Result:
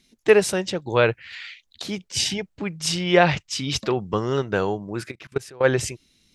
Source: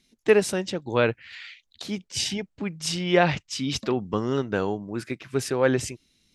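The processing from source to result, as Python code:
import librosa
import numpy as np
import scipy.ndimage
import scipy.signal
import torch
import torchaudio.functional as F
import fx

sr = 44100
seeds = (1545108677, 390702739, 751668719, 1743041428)

y = fx.dynamic_eq(x, sr, hz=250.0, q=2.7, threshold_db=-42.0, ratio=4.0, max_db=-8)
y = fx.level_steps(y, sr, step_db=23, at=(5.1, 5.63), fade=0.02)
y = F.gain(torch.from_numpy(y), 4.0).numpy()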